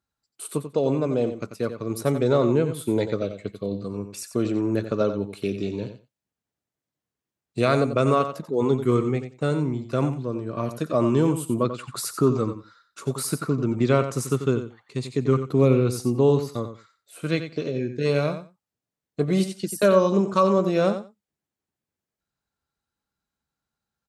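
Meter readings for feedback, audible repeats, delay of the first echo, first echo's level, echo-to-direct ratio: 15%, 2, 90 ms, −10.0 dB, −10.0 dB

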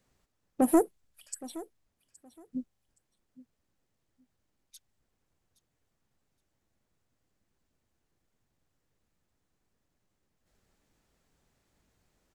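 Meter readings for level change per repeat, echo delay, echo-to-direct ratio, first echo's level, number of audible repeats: −14.0 dB, 819 ms, −18.5 dB, −18.5 dB, 2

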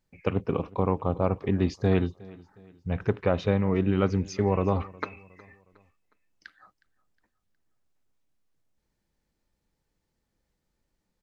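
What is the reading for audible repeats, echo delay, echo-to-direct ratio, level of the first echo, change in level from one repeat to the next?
2, 363 ms, −21.5 dB, −22.5 dB, −7.5 dB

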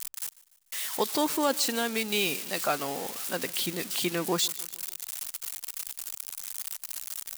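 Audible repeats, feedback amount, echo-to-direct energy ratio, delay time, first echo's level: 3, 51%, −20.5 dB, 148 ms, −22.0 dB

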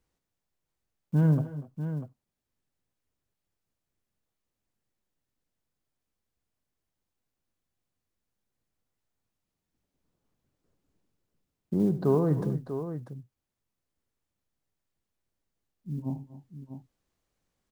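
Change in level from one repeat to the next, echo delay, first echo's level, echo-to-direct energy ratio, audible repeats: repeats not evenly spaced, 75 ms, −13.5 dB, −7.5 dB, 3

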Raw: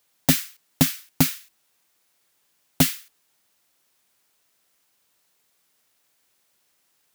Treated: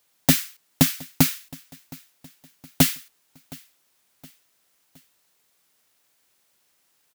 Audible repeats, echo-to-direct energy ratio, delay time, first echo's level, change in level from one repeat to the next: 2, −22.0 dB, 717 ms, −23.0 dB, −6.5 dB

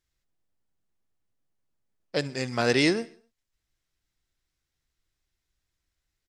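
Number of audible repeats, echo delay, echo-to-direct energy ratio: 3, 64 ms, −20.5 dB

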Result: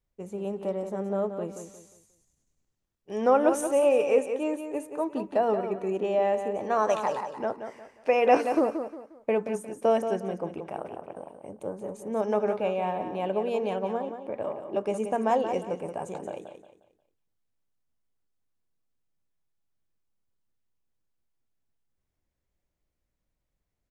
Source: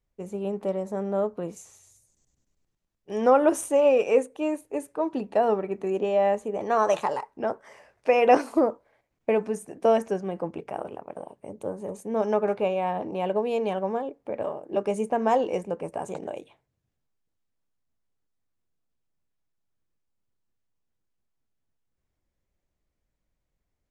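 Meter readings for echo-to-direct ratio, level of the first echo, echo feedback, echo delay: −8.0 dB, −8.5 dB, 32%, 178 ms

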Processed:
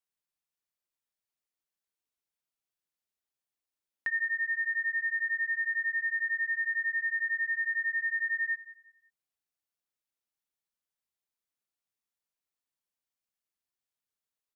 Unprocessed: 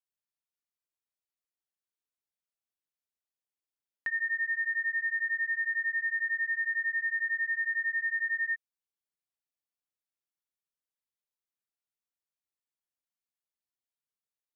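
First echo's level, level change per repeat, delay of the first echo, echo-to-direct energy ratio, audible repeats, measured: −16.0 dB, −11.0 dB, 181 ms, −15.5 dB, 2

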